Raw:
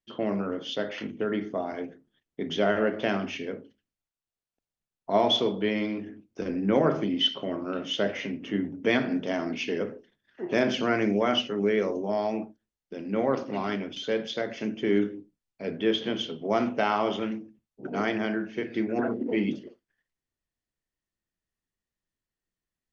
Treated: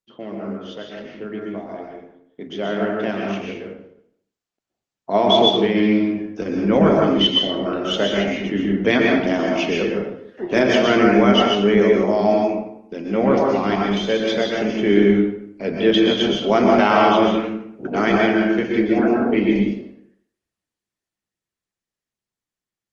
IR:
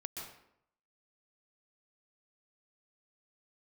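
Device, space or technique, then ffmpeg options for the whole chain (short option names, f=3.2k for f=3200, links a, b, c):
far-field microphone of a smart speaker: -filter_complex "[1:a]atrim=start_sample=2205[a];[0:a][a]afir=irnorm=-1:irlink=0,highpass=94,dynaudnorm=f=580:g=13:m=16dB" -ar 48000 -c:a libopus -b:a 20k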